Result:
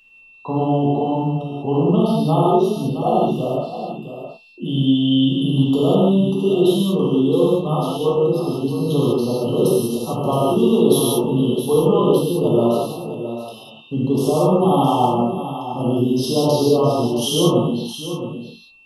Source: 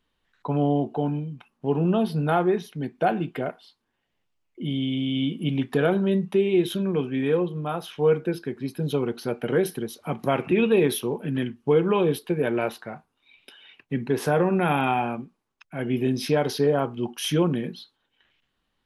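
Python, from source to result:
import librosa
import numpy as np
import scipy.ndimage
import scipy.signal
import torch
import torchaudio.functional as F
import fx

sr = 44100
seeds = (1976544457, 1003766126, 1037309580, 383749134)

p1 = fx.level_steps(x, sr, step_db=16)
p2 = x + (p1 * librosa.db_to_amplitude(1.5))
p3 = p2 + 10.0 ** (-44.0 / 20.0) * np.sin(2.0 * np.pi * 2700.0 * np.arange(len(p2)) / sr)
p4 = fx.brickwall_bandstop(p3, sr, low_hz=1300.0, high_hz=2700.0)
p5 = p4 + 10.0 ** (-10.5 / 20.0) * np.pad(p4, (int(668 * sr / 1000.0), 0))[:len(p4)]
p6 = fx.rev_gated(p5, sr, seeds[0], gate_ms=220, shape='flat', drr_db=-6.5)
y = p6 * librosa.db_to_amplitude(-3.0)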